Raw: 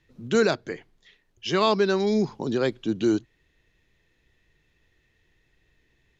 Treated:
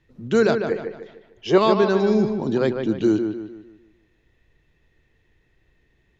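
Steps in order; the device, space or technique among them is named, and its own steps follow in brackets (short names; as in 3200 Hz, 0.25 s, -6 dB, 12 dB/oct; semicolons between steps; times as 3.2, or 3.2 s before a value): 0.71–1.58 band shelf 620 Hz +9.5 dB; behind a face mask (high shelf 2000 Hz -7.5 dB); dark delay 0.15 s, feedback 40%, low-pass 3200 Hz, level -6.5 dB; gain +3.5 dB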